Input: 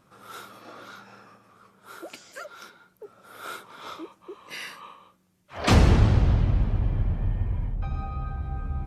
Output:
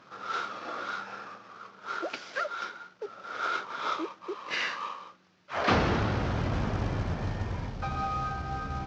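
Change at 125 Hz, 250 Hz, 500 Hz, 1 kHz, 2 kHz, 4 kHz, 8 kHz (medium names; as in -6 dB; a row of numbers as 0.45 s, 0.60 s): -9.0 dB, -4.0 dB, 0.0 dB, +4.0 dB, +4.0 dB, -0.5 dB, -7.5 dB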